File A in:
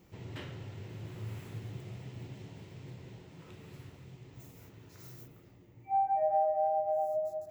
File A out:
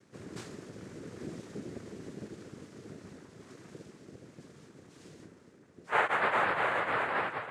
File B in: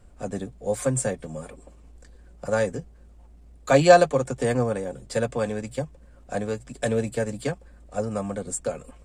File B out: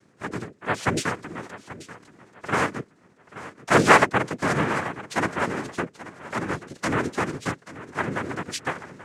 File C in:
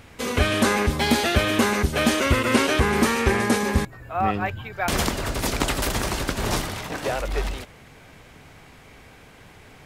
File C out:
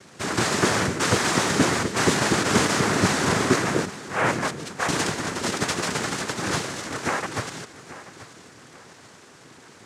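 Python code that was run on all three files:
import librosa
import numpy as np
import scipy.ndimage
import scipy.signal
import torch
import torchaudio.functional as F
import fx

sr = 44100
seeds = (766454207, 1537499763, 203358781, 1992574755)

y = fx.noise_vocoder(x, sr, seeds[0], bands=3)
y = 10.0 ** (-3.0 / 20.0) * np.tanh(y / 10.0 ** (-3.0 / 20.0))
y = fx.echo_feedback(y, sr, ms=833, feedback_pct=35, wet_db=-16)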